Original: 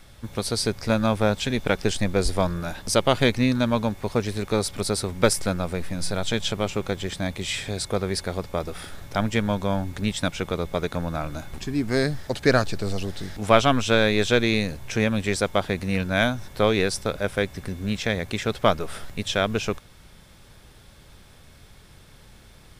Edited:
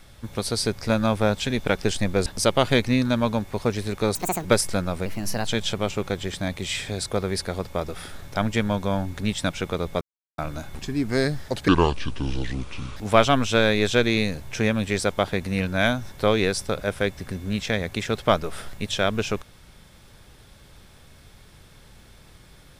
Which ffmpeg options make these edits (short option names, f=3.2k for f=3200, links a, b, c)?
-filter_complex "[0:a]asplit=10[a][b][c][d][e][f][g][h][i][j];[a]atrim=end=2.262[k];[b]atrim=start=2.758:end=4.654[l];[c]atrim=start=4.65:end=5.17,asetpts=PTS-STARTPTS,asetrate=77175,aresample=44100[m];[d]atrim=start=5.166:end=5.784[n];[e]atrim=start=5.78:end=6.26,asetpts=PTS-STARTPTS,asetrate=51156,aresample=44100,atrim=end_sample=18248,asetpts=PTS-STARTPTS[o];[f]atrim=start=6.256:end=10.8,asetpts=PTS-STARTPTS,afade=t=out:st=4.54:d=0.004:c=hsin[p];[g]atrim=start=10.8:end=11.17,asetpts=PTS-STARTPTS,volume=0[q];[h]atrim=start=11.17:end=12.474,asetpts=PTS-STARTPTS,afade=t=in:d=0.004:c=hsin[r];[i]atrim=start=12.47:end=13.33,asetpts=PTS-STARTPTS,asetrate=29547,aresample=44100[s];[j]atrim=start=13.326[t];[k][l]acrossfade=d=0.004:c1=hsin:c2=hsin[u];[u][m]acrossfade=d=0.004:c1=hsin:c2=hsin[v];[v][n]acrossfade=d=0.004:c1=hsin:c2=hsin[w];[w][o]acrossfade=d=0.004:c1=hsin:c2=hsin[x];[p][q][r]concat=n=3:v=0:a=1[y];[x][y]acrossfade=d=0.004:c1=hsin:c2=hsin[z];[z][s]acrossfade=d=0.004:c1=hsin:c2=hsin[aa];[aa][t]acrossfade=d=0.004:c1=hsin:c2=hsin"